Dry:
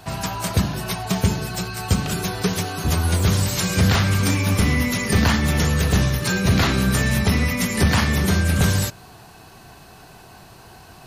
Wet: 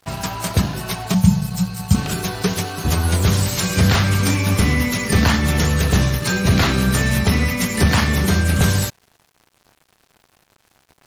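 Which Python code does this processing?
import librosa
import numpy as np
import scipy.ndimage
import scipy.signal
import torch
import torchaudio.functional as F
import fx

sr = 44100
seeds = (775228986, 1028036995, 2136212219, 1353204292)

y = fx.curve_eq(x, sr, hz=(100.0, 190.0, 330.0, 840.0, 1600.0, 8900.0), db=(0, 10, -27, -3, -10, 0), at=(1.14, 1.95))
y = np.sign(y) * np.maximum(np.abs(y) - 10.0 ** (-39.5 / 20.0), 0.0)
y = y * librosa.db_to_amplitude(2.5)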